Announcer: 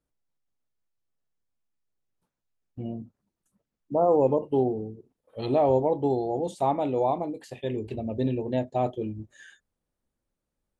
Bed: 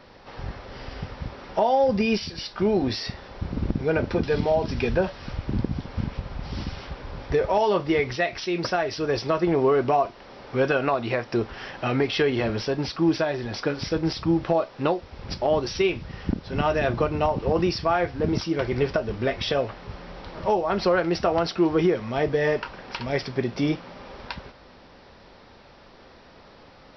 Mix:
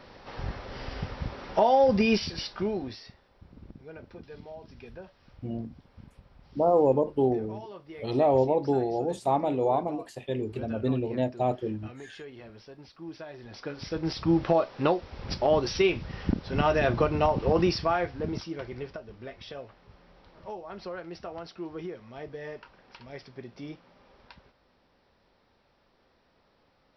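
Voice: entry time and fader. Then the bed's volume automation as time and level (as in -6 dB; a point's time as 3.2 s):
2.65 s, -0.5 dB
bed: 2.39 s -0.5 dB
3.26 s -22 dB
12.96 s -22 dB
14.35 s -1 dB
17.69 s -1 dB
19.05 s -17 dB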